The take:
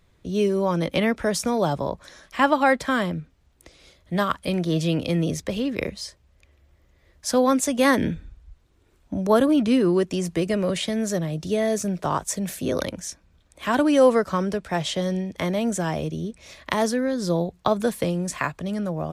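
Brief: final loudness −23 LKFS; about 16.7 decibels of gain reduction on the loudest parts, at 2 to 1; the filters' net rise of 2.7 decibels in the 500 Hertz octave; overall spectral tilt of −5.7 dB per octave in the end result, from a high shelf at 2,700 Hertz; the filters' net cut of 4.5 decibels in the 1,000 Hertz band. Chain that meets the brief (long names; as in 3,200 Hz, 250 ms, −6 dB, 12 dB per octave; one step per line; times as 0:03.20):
parametric band 500 Hz +5 dB
parametric band 1,000 Hz −7 dB
high-shelf EQ 2,700 Hz −5 dB
downward compressor 2 to 1, threshold −41 dBFS
level +12.5 dB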